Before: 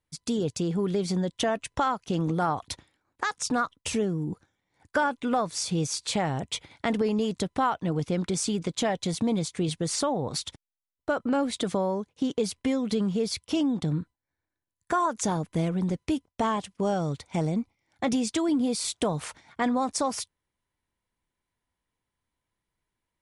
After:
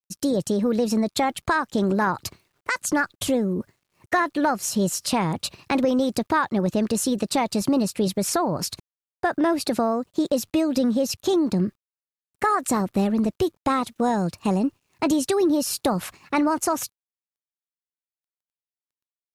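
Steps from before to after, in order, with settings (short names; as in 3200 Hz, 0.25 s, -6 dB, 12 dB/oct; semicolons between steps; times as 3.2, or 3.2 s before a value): varispeed +20%; requantised 12-bit, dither none; low shelf 340 Hz +3 dB; gain +3.5 dB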